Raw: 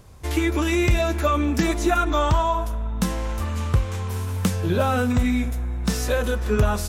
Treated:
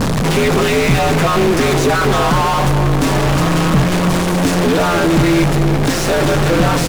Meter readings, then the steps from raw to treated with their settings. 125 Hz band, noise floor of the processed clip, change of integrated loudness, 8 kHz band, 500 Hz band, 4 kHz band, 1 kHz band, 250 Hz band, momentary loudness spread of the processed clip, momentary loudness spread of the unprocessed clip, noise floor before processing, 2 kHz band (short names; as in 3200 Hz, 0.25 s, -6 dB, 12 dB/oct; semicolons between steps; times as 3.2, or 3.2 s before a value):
+9.0 dB, -16 dBFS, +9.0 dB, +10.5 dB, +10.5 dB, +12.5 dB, +9.5 dB, +9.5 dB, 2 LU, 7 LU, -28 dBFS, +10.5 dB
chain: delta modulation 64 kbps, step -24 dBFS; ring modulator 85 Hz; overdrive pedal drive 37 dB, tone 4500 Hz, clips at -9 dBFS; low shelf 460 Hz +8.5 dB; on a send: echo 0.331 s -11.5 dB; on the sum: gain -1.5 dB